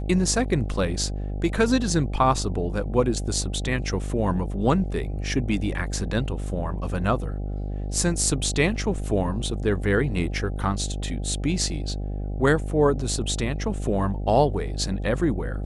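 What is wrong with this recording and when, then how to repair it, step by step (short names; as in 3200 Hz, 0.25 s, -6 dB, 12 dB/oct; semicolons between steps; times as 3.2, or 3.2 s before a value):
buzz 50 Hz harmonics 16 -29 dBFS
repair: de-hum 50 Hz, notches 16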